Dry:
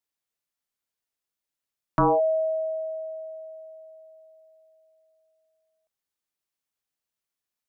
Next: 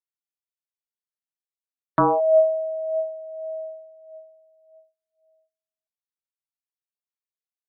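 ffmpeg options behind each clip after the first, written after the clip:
ffmpeg -i in.wav -af "aphaser=in_gain=1:out_gain=1:delay=2.1:decay=0.57:speed=0.56:type=sinusoidal,highpass=frequency=890:poles=1,afftdn=noise_reduction=26:noise_floor=-48,volume=8.5dB" out.wav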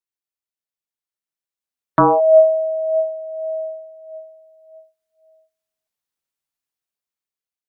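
ffmpeg -i in.wav -af "dynaudnorm=framelen=660:gausssize=5:maxgain=9.5dB" out.wav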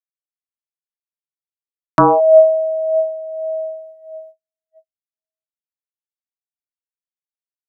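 ffmpeg -i in.wav -af "agate=range=-48dB:threshold=-41dB:ratio=16:detection=peak,volume=2dB" out.wav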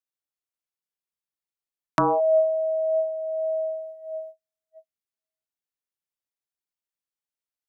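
ffmpeg -i in.wav -af "acompressor=threshold=-27dB:ratio=2" out.wav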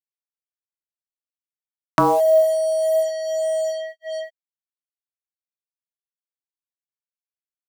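ffmpeg -i in.wav -af "acrusher=bits=5:mix=0:aa=0.5,volume=4.5dB" out.wav

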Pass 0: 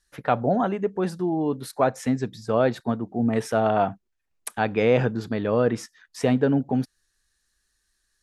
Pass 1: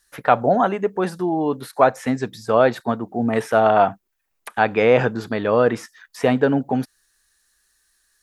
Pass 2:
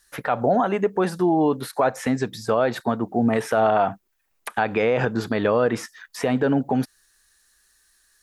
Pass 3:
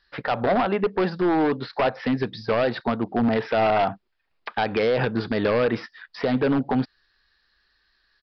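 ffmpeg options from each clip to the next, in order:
ffmpeg -i in.wav -filter_complex "[0:a]aemphasis=mode=production:type=50fm,acrossover=split=3200[link_01][link_02];[link_02]acompressor=threshold=-39dB:ratio=4:attack=1:release=60[link_03];[link_01][link_03]amix=inputs=2:normalize=0,equalizer=frequency=1100:width=0.36:gain=9,volume=-1dB" out.wav
ffmpeg -i in.wav -af "alimiter=limit=-13.5dB:level=0:latency=1:release=110,volume=3dB" out.wav
ffmpeg -i in.wav -af "aeval=exprs='0.188*(abs(mod(val(0)/0.188+3,4)-2)-1)':channel_layout=same,aresample=11025,aresample=44100" out.wav

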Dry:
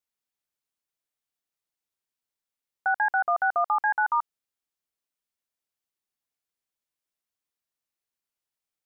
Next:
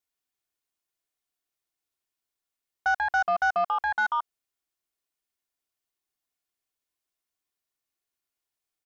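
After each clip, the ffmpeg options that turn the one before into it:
ffmpeg -i in.wav -af "aecho=1:1:2.8:0.34,aeval=exprs='0.188*(cos(1*acos(clip(val(0)/0.188,-1,1)))-cos(1*PI/2))+0.0119*(cos(5*acos(clip(val(0)/0.188,-1,1)))-cos(5*PI/2))':channel_layout=same,volume=-1.5dB" out.wav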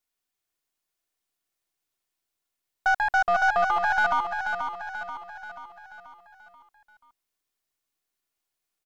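ffmpeg -i in.wav -af "aeval=exprs='if(lt(val(0),0),0.708*val(0),val(0))':channel_layout=same,aecho=1:1:484|968|1452|1936|2420|2904:0.473|0.241|0.123|0.0628|0.032|0.0163,volume=3.5dB" out.wav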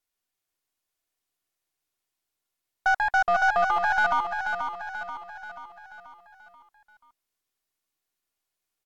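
ffmpeg -i in.wav -ar 44100 -c:a libvorbis -b:a 128k out.ogg

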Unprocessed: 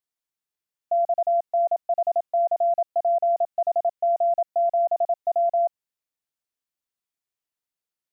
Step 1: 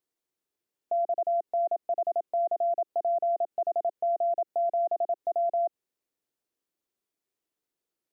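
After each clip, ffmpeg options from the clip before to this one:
ffmpeg -i in.wav -af "equalizer=frequency=360:width=1:gain=13,alimiter=limit=-22.5dB:level=0:latency=1:release=76" out.wav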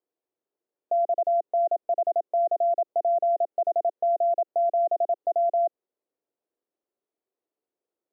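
ffmpeg -i in.wav -af "bandpass=frequency=510:width_type=q:width=1.2:csg=0,volume=5.5dB" out.wav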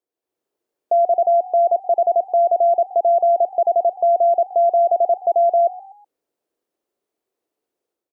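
ffmpeg -i in.wav -filter_complex "[0:a]dynaudnorm=framelen=110:gausssize=5:maxgain=8dB,asplit=4[link_01][link_02][link_03][link_04];[link_02]adelay=124,afreqshift=47,volume=-20dB[link_05];[link_03]adelay=248,afreqshift=94,volume=-27.3dB[link_06];[link_04]adelay=372,afreqshift=141,volume=-34.7dB[link_07];[link_01][link_05][link_06][link_07]amix=inputs=4:normalize=0" out.wav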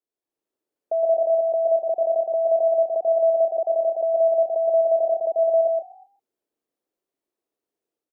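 ffmpeg -i in.wav -af "aecho=1:1:116.6|148.7:0.708|0.282,afreqshift=-27,volume=-7.5dB" out.wav

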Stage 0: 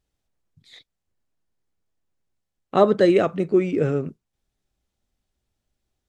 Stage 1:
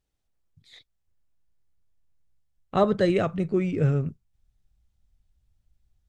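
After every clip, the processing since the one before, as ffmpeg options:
ffmpeg -i in.wav -af "asubboost=boost=8:cutoff=120,volume=-3.5dB" out.wav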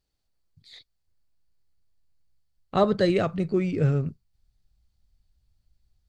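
ffmpeg -i in.wav -af "equalizer=frequency=4500:width=5.2:gain=11.5" out.wav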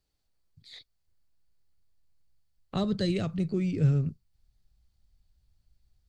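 ffmpeg -i in.wav -filter_complex "[0:a]acrossover=split=260|3000[link_01][link_02][link_03];[link_02]acompressor=threshold=-42dB:ratio=2.5[link_04];[link_01][link_04][link_03]amix=inputs=3:normalize=0" out.wav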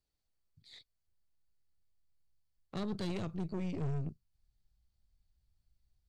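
ffmpeg -i in.wav -af "aeval=exprs='(tanh(31.6*val(0)+0.7)-tanh(0.7))/31.6':channel_layout=same,volume=-3.5dB" out.wav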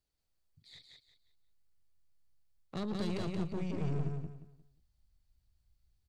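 ffmpeg -i in.wav -af "aecho=1:1:177|354|531|708:0.668|0.187|0.0524|0.0147" out.wav

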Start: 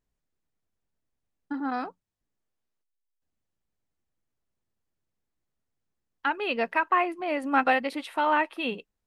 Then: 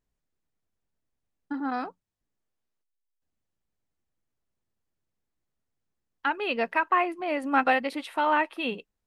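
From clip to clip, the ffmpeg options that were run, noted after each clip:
ffmpeg -i in.wav -af anull out.wav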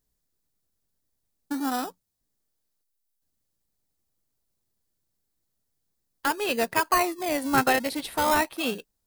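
ffmpeg -i in.wav -filter_complex "[0:a]asplit=2[link_01][link_02];[link_02]acrusher=samples=29:mix=1:aa=0.000001:lfo=1:lforange=17.4:lforate=0.42,volume=-9dB[link_03];[link_01][link_03]amix=inputs=2:normalize=0,aexciter=amount=2.7:drive=5.8:freq=3800" out.wav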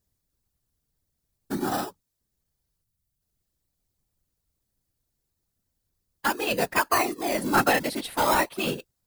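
ffmpeg -i in.wav -af "afftfilt=real='hypot(re,im)*cos(2*PI*random(0))':imag='hypot(re,im)*sin(2*PI*random(1))':win_size=512:overlap=0.75,volume=6.5dB" out.wav

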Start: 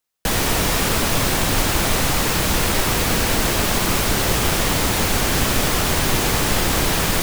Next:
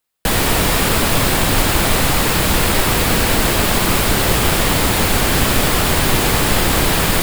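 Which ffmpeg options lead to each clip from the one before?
ffmpeg -i in.wav -af "equalizer=frequency=6000:width=3.4:gain=-5.5,volume=4dB" out.wav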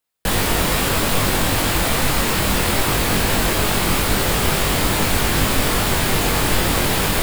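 ffmpeg -i in.wav -af "flanger=delay=20:depth=2.6:speed=2.4" out.wav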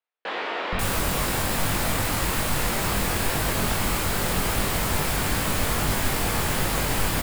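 ffmpeg -i in.wav -filter_complex "[0:a]acrossover=split=350|3500[link_01][link_02][link_03];[link_01]adelay=470[link_04];[link_03]adelay=540[link_05];[link_04][link_02][link_05]amix=inputs=3:normalize=0,volume=-5.5dB" out.wav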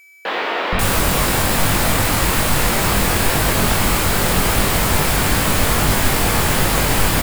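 ffmpeg -i in.wav -af "aeval=exprs='val(0)+0.00251*sin(2*PI*2300*n/s)':channel_layout=same,acrusher=bits=9:mix=0:aa=0.000001,volume=8dB" out.wav

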